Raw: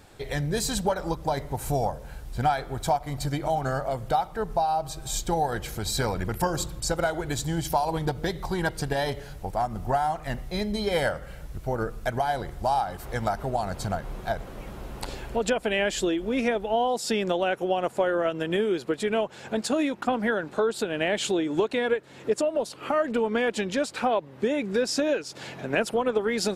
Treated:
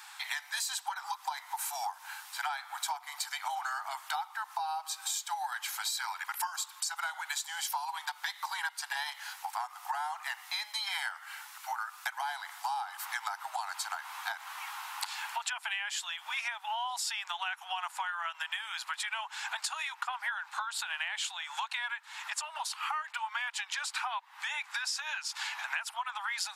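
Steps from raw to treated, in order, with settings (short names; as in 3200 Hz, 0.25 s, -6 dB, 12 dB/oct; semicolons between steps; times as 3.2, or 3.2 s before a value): steep high-pass 840 Hz 72 dB/oct; compressor 6:1, threshold -41 dBFS, peak gain reduction 16.5 dB; gain +8 dB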